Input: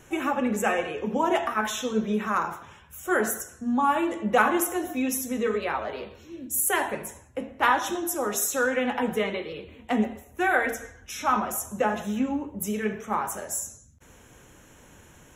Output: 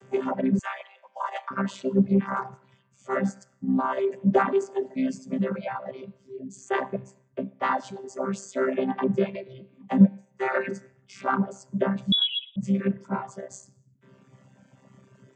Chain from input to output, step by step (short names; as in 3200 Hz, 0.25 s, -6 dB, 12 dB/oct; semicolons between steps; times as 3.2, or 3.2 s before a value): chord vocoder bare fifth, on C3; 0.59–1.51 HPF 820 Hz 24 dB/oct; reverb removal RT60 0.99 s; 10–10.82 comb 5.6 ms, depth 67%; in parallel at -9 dB: soft clip -16.5 dBFS, distortion -13 dB; 12.12–12.56 on the sum: inverted band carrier 3600 Hz